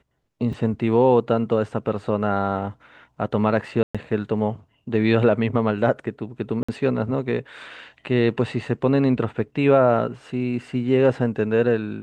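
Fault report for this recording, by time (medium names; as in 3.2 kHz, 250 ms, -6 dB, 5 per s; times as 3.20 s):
0.53 s: dropout 2.1 ms
3.83–3.95 s: dropout 116 ms
6.63–6.68 s: dropout 55 ms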